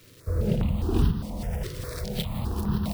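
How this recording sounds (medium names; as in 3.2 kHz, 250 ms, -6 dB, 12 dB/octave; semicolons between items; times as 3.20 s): a quantiser's noise floor 8-bit, dither none; tremolo saw up 1.8 Hz, depth 45%; notches that jump at a steady rate 4.9 Hz 210–2200 Hz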